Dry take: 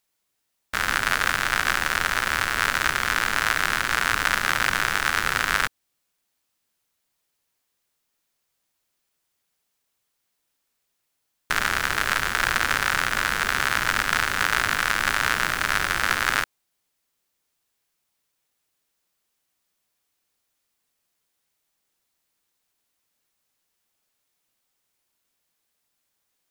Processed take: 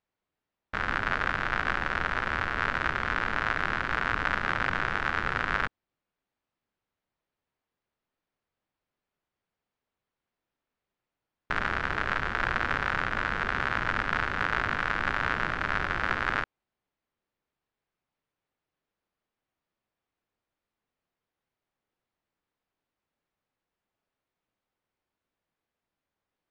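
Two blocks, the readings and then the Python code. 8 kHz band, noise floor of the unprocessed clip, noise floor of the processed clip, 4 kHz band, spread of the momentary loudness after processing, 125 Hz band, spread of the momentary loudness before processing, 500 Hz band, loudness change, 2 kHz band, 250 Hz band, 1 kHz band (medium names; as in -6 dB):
under -20 dB, -77 dBFS, under -85 dBFS, -12.5 dB, 2 LU, -0.5 dB, 2 LU, -2.0 dB, -6.5 dB, -6.0 dB, -1.0 dB, -4.5 dB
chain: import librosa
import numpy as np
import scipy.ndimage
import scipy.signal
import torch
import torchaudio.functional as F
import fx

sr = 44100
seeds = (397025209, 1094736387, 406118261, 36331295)

y = fx.spacing_loss(x, sr, db_at_10k=36)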